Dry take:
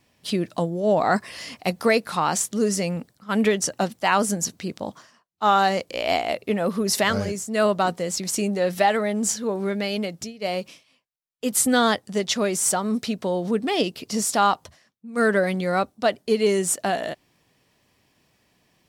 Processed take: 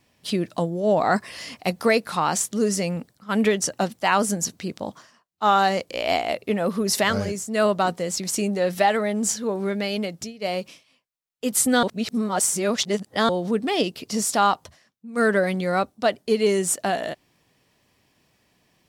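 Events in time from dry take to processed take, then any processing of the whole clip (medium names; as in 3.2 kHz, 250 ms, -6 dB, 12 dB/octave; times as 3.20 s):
11.83–13.29 s: reverse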